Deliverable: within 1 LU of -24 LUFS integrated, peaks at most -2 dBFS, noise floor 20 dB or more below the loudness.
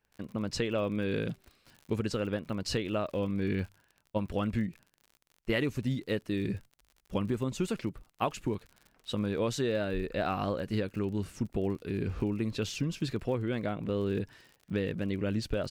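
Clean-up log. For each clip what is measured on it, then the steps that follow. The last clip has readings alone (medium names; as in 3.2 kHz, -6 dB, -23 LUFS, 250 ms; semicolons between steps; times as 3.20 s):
tick rate 48 per s; loudness -33.5 LUFS; peak level -17.0 dBFS; loudness target -24.0 LUFS
-> de-click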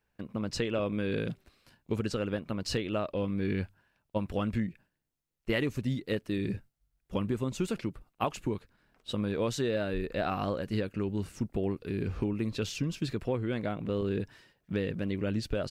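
tick rate 0 per s; loudness -33.5 LUFS; peak level -17.0 dBFS; loudness target -24.0 LUFS
-> trim +9.5 dB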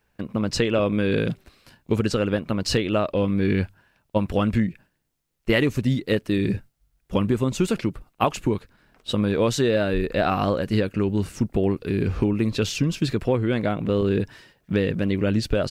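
loudness -24.0 LUFS; peak level -7.5 dBFS; noise floor -72 dBFS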